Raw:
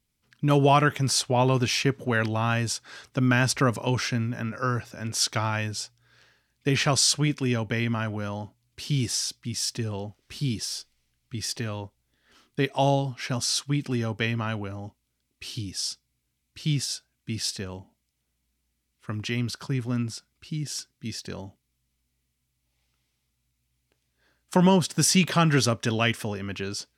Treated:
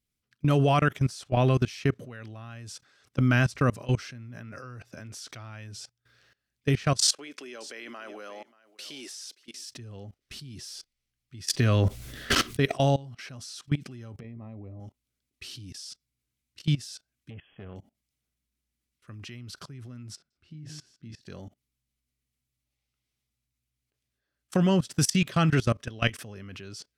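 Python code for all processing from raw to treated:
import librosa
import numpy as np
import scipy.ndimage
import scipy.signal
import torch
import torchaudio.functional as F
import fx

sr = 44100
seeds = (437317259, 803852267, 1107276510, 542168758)

y = fx.chain(x, sr, fx.highpass(hz=340.0, slope=24),
    fx.echo_single(ms=584, db=-18.5), at=(7.02, 9.64))
y = fx.chain(y, sr, fx.notch(hz=840.0, q=16.0),
    fx.env_flatten(amount_pct=100), at=(11.47, 12.83))
y = fx.chain(y, sr, fx.over_compress(threshold_db=-34.0, ratio=-1.0),
    fx.moving_average(points=30),
    fx.doubler(ms=13.0, db=-12.0), at=(14.2, 14.8))
y = fx.chain(y, sr, fx.backlash(play_db=-41.0),
    fx.brickwall_lowpass(high_hz=3400.0),
    fx.transformer_sat(knee_hz=410.0), at=(17.3, 17.76))
y = fx.chain(y, sr, fx.lowpass(hz=1700.0, slope=6),
    fx.doubler(ms=26.0, db=-5.5),
    fx.echo_single(ms=153, db=-17.5), at=(20.15, 21.21))
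y = fx.notch(y, sr, hz=910.0, q=6.0)
y = fx.dynamic_eq(y, sr, hz=110.0, q=1.2, threshold_db=-39.0, ratio=4.0, max_db=4)
y = fx.level_steps(y, sr, step_db=21)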